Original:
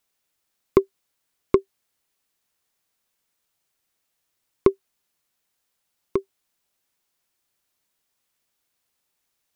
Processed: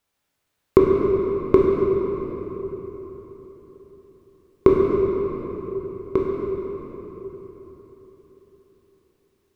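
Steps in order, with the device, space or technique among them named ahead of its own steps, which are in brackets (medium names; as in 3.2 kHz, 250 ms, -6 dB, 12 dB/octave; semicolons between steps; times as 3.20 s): peaking EQ 82 Hz +5.5 dB 1.2 oct; swimming-pool hall (reverberation RT60 4.2 s, pre-delay 14 ms, DRR -3.5 dB; treble shelf 3.5 kHz -7.5 dB); trim +2 dB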